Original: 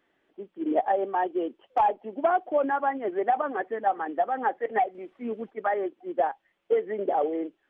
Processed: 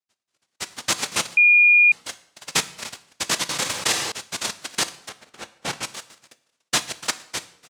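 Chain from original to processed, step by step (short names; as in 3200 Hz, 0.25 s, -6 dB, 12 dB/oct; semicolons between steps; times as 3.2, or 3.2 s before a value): random spectral dropouts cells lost 83%; HPF 1400 Hz 12 dB/oct; speakerphone echo 0.29 s, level -19 dB; sine folder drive 11 dB, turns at -22 dBFS; tilt -4.5 dB/oct; noise vocoder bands 1; sample leveller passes 1; 5.09–5.83 high shelf 3000 Hz -11.5 dB; reverb RT60 0.65 s, pre-delay 9 ms, DRR 12.5 dB; 1.37–1.92 bleep 2430 Hz -10.5 dBFS; 3.49–4.12 fast leveller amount 70%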